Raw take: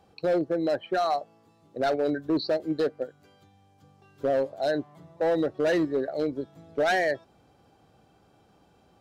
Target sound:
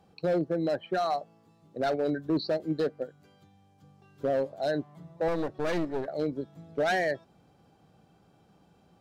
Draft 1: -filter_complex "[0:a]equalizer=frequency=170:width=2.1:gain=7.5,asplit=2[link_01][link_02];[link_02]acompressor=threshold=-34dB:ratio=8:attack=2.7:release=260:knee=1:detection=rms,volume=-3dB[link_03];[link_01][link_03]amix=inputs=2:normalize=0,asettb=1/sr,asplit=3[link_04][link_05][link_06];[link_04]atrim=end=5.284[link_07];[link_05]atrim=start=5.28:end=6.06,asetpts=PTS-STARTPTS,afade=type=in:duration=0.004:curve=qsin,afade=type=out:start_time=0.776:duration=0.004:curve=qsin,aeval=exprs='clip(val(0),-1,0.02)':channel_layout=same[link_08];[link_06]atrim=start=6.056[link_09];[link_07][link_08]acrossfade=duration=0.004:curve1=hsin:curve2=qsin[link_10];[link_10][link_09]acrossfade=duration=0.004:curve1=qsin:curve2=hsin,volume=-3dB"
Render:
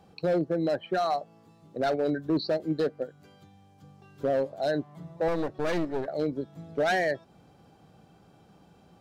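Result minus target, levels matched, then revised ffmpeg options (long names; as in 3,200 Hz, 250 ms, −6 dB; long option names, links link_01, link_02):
downward compressor: peak gain reduction +14.5 dB
-filter_complex "[0:a]equalizer=frequency=170:width=2.1:gain=7.5,asettb=1/sr,asplit=3[link_01][link_02][link_03];[link_01]atrim=end=5.284[link_04];[link_02]atrim=start=5.28:end=6.06,asetpts=PTS-STARTPTS,afade=type=in:duration=0.004:curve=qsin,afade=type=out:start_time=0.776:duration=0.004:curve=qsin,aeval=exprs='clip(val(0),-1,0.02)':channel_layout=same[link_05];[link_03]atrim=start=6.056[link_06];[link_04][link_05]acrossfade=duration=0.004:curve1=hsin:curve2=qsin[link_07];[link_07][link_06]acrossfade=duration=0.004:curve1=qsin:curve2=hsin,volume=-3dB"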